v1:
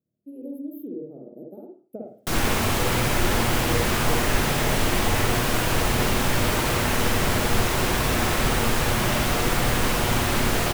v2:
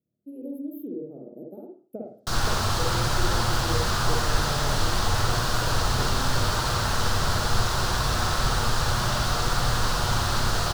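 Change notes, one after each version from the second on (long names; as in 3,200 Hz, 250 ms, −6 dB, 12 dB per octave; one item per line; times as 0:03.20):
background: add drawn EQ curve 120 Hz 0 dB, 270 Hz −11 dB, 1,400 Hz +2 dB, 2,200 Hz −12 dB, 4,400 Hz +4 dB, 13,000 Hz −10 dB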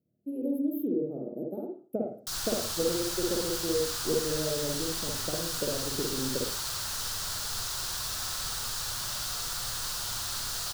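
speech +5.0 dB
background: add first-order pre-emphasis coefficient 0.9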